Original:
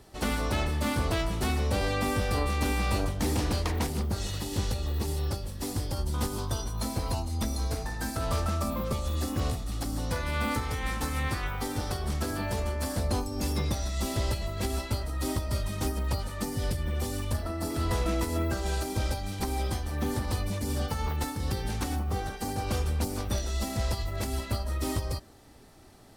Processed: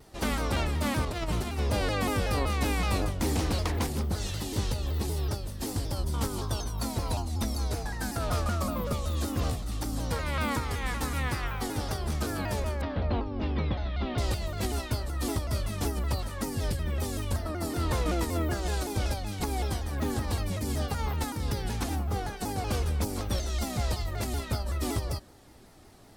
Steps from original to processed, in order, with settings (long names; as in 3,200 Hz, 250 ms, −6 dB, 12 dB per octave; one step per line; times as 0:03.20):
0:01.05–0:01.59: compressor whose output falls as the input rises −30 dBFS, ratio −0.5
0:12.81–0:14.18: Butterworth low-pass 3,600 Hz 36 dB per octave
pitch modulation by a square or saw wave saw down 5.3 Hz, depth 160 cents